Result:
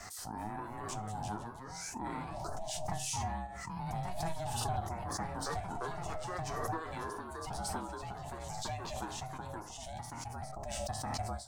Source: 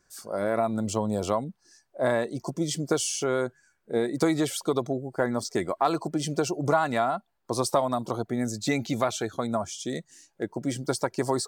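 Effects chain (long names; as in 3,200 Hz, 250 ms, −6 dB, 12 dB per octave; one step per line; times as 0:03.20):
Butterworth high-pass 250 Hz 48 dB per octave
parametric band 430 Hz +10 dB 0.29 octaves
ring modulation 320 Hz
resonators tuned to a chord C#2 minor, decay 0.23 s
flutter between parallel walls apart 11.2 metres, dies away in 0.24 s
delay with pitch and tempo change per echo 286 ms, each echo +2 semitones, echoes 2, each echo −6 dB
background raised ahead of every attack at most 21 dB per second
level −5.5 dB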